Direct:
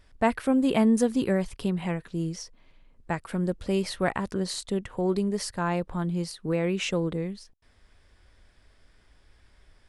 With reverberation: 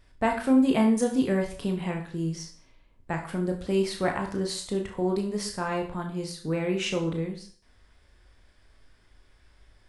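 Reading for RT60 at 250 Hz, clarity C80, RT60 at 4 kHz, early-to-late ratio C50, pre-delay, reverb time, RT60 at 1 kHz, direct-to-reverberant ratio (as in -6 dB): 0.45 s, 13.0 dB, 0.45 s, 8.5 dB, 19 ms, 0.45 s, 0.45 s, 2.5 dB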